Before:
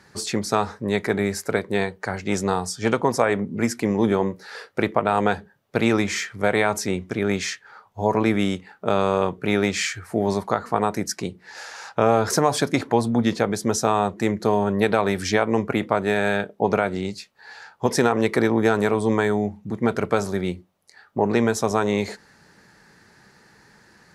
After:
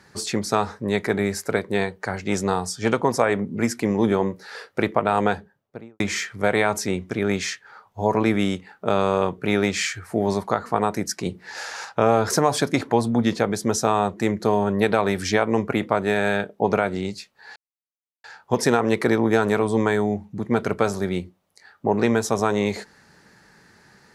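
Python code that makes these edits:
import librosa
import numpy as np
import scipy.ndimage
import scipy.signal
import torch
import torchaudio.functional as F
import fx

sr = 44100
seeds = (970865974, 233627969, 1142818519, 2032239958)

y = fx.studio_fade_out(x, sr, start_s=5.21, length_s=0.79)
y = fx.edit(y, sr, fx.clip_gain(start_s=11.26, length_s=0.59, db=4.5),
    fx.insert_silence(at_s=17.56, length_s=0.68), tone=tone)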